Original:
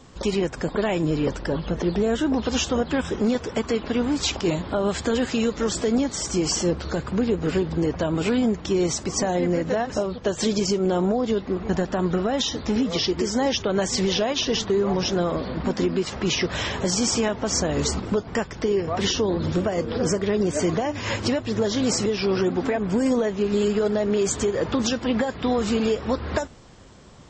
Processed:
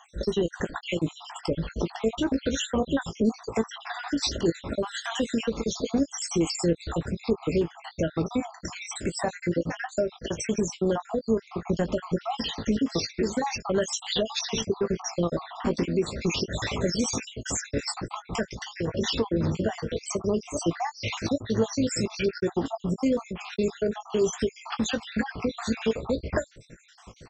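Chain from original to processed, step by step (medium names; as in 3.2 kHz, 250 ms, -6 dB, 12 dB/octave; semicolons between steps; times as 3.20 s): random holes in the spectrogram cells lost 63%; in parallel at +2 dB: compression, threshold -34 dBFS, peak gain reduction 15 dB; on the sum: doubling 18 ms -10 dB; trim -3.5 dB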